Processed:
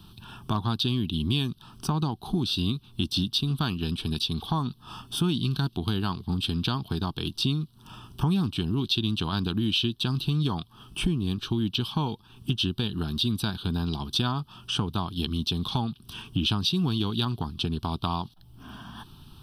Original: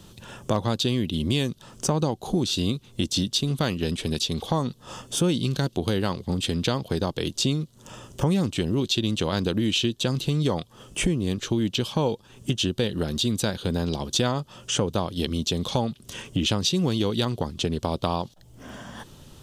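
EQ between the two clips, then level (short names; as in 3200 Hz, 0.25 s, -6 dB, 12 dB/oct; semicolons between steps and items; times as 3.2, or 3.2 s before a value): fixed phaser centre 2000 Hz, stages 6; 0.0 dB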